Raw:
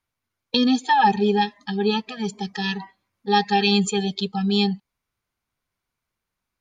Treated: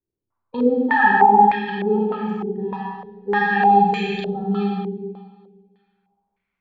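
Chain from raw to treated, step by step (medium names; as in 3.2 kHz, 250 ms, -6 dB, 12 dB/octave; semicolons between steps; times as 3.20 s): Schroeder reverb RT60 1.7 s, combs from 33 ms, DRR -4.5 dB; step-sequenced low-pass 3.3 Hz 380–2200 Hz; trim -6.5 dB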